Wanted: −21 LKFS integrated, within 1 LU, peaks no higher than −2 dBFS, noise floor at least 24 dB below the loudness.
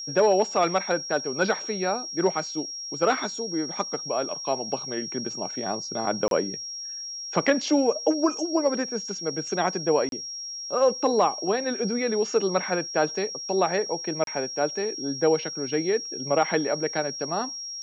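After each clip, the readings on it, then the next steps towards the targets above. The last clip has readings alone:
number of dropouts 3; longest dropout 32 ms; interfering tone 5,600 Hz; level of the tone −33 dBFS; integrated loudness −26.0 LKFS; sample peak −9.0 dBFS; target loudness −21.0 LKFS
→ repair the gap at 0:06.28/0:10.09/0:14.24, 32 ms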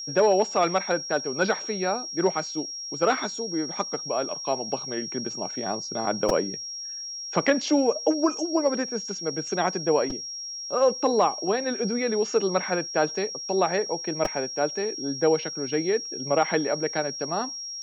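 number of dropouts 0; interfering tone 5,600 Hz; level of the tone −33 dBFS
→ notch filter 5,600 Hz, Q 30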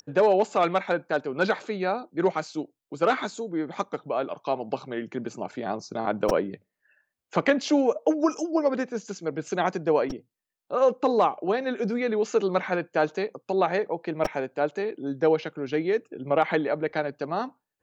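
interfering tone none found; integrated loudness −26.5 LKFS; sample peak −9.0 dBFS; target loudness −21.0 LKFS
→ level +5.5 dB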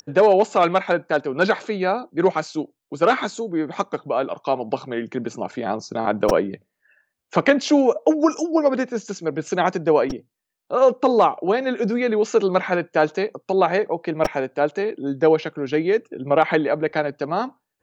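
integrated loudness −21.0 LKFS; sample peak −3.5 dBFS; background noise floor −80 dBFS

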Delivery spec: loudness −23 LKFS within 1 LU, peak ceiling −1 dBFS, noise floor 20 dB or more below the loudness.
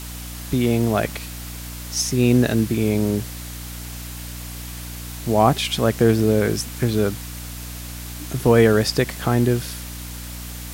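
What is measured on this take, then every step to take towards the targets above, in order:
mains hum 60 Hz; hum harmonics up to 300 Hz; level of the hum −32 dBFS; background noise floor −34 dBFS; target noise floor −40 dBFS; integrated loudness −20.0 LKFS; sample peak −3.5 dBFS; target loudness −23.0 LKFS
→ mains-hum notches 60/120/180/240/300 Hz
noise reduction from a noise print 6 dB
level −3 dB

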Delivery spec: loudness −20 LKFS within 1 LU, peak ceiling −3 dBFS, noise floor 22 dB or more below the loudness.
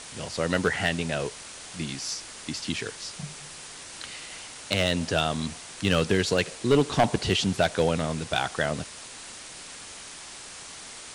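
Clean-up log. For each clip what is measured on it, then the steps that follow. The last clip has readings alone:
share of clipped samples 0.2%; peaks flattened at −13.5 dBFS; background noise floor −43 dBFS; target noise floor −49 dBFS; integrated loudness −27.0 LKFS; sample peak −13.5 dBFS; target loudness −20.0 LKFS
→ clipped peaks rebuilt −13.5 dBFS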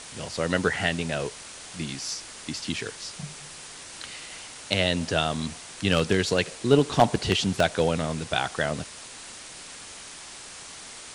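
share of clipped samples 0.0%; background noise floor −43 dBFS; target noise floor −49 dBFS
→ broadband denoise 6 dB, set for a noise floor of −43 dBFS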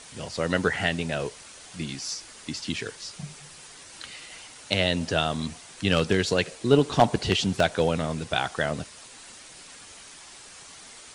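background noise floor −47 dBFS; target noise floor −49 dBFS
→ broadband denoise 6 dB, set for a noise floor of −47 dBFS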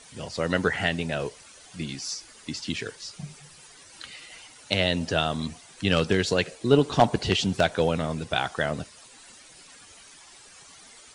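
background noise floor −51 dBFS; integrated loudness −26.5 LKFS; sample peak −4.5 dBFS; target loudness −20.0 LKFS
→ level +6.5 dB
brickwall limiter −3 dBFS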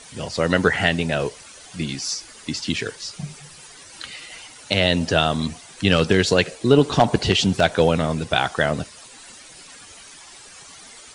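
integrated loudness −20.5 LKFS; sample peak −3.0 dBFS; background noise floor −44 dBFS

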